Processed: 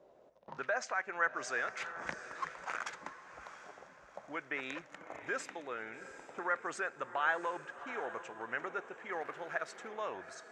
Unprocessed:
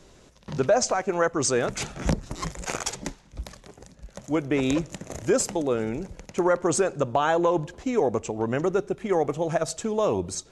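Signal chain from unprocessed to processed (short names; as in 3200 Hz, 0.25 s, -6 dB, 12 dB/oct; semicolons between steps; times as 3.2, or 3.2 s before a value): 9.11–9.87 crackle 450/s -37 dBFS; auto-wah 590–1700 Hz, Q 2.8, up, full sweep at -25.5 dBFS; diffused feedback echo 0.735 s, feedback 41%, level -12 dB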